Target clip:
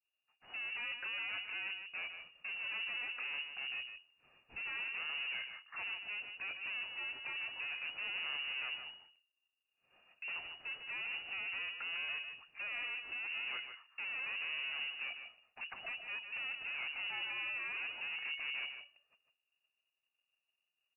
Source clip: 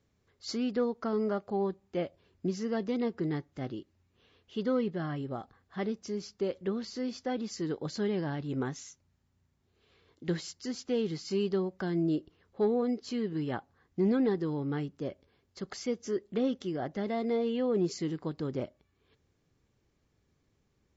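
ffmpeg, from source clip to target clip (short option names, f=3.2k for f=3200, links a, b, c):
-filter_complex "[0:a]agate=range=-33dB:threshold=-58dB:ratio=3:detection=peak,equalizer=f=590:w=0.58:g=-5,asplit=2[a][b];[b]alimiter=level_in=9dB:limit=-24dB:level=0:latency=1:release=206,volume=-9dB,volume=-2dB[c];[a][c]amix=inputs=2:normalize=0,aeval=exprs='(tanh(200*val(0)+0.25)-tanh(0.25))/200':c=same,asettb=1/sr,asplit=3[d][e][f];[d]atrim=end=18.144[g];[e]atrim=start=18.14:end=18.64,asetpts=PTS-STARTPTS,afade=t=in:d=0.004:c=qsin,afade=t=out:st=0.496:d=0.004:c=qsin,aeval=exprs='val(0)+0.00224*sin(2*PI*690*n/s)':c=same[h];[f]atrim=start=18.636[i];[g][h]acrossfade=d=0.004:c1=hsin:c2=qsin[j];[j][i]acrossfade=d=0.004:c1=qsin:c2=hsin,asplit=2[k][l];[l]aecho=0:1:151:0.398[m];[k][m]amix=inputs=2:normalize=0,lowpass=f=2.5k:t=q:w=0.5098,lowpass=f=2.5k:t=q:w=0.6013,lowpass=f=2.5k:t=q:w=0.9,lowpass=f=2.5k:t=q:w=2.563,afreqshift=-2900,volume=5dB"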